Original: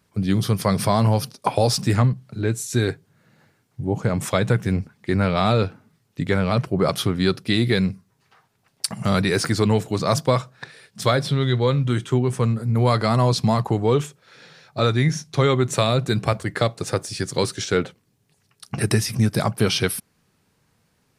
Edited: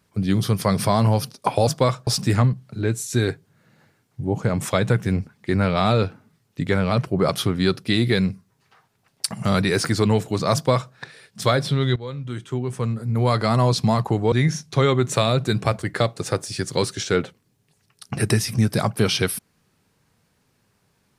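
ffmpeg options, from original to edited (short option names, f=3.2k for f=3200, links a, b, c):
-filter_complex "[0:a]asplit=5[a][b][c][d][e];[a]atrim=end=1.672[f];[b]atrim=start=10.138:end=10.542[g];[c]atrim=start=1.668:end=11.56,asetpts=PTS-STARTPTS,afade=t=out:st=9.888:d=0.004:c=hsin:silence=0.16788[h];[d]atrim=start=11.56:end=13.922,asetpts=PTS-STARTPTS,afade=t=in:d=1.57:silence=0.16788[i];[e]atrim=start=14.928[j];[f][g]acrossfade=d=0.004:c1=hsin:c2=hsin[k];[h][i]concat=n=2:v=0:a=1[l];[k][l]acrossfade=d=0.004:c1=hsin:c2=hsin[m];[m][j]acrossfade=d=0.004:c1=hsin:c2=hsin"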